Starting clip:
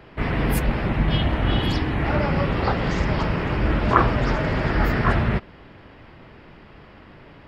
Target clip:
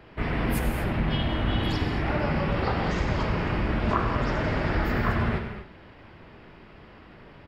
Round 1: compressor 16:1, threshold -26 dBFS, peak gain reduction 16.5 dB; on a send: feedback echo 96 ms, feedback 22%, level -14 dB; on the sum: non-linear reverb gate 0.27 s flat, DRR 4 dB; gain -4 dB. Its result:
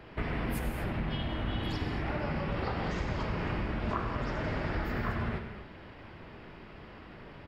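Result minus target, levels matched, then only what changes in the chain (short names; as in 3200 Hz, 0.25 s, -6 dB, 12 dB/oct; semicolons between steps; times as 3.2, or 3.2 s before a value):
compressor: peak gain reduction +8.5 dB
change: compressor 16:1, threshold -17 dBFS, peak gain reduction 8 dB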